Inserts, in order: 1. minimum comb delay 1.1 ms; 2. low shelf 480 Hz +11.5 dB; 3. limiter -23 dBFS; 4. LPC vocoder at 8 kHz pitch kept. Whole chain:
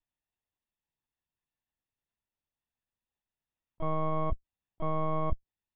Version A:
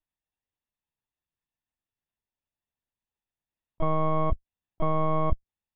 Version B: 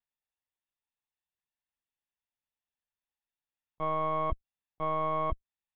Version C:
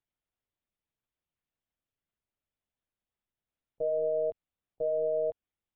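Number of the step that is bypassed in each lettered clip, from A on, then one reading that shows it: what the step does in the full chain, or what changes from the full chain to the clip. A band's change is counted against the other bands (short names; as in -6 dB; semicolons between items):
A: 3, mean gain reduction 5.0 dB; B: 2, 125 Hz band -8.0 dB; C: 1, crest factor change -5.0 dB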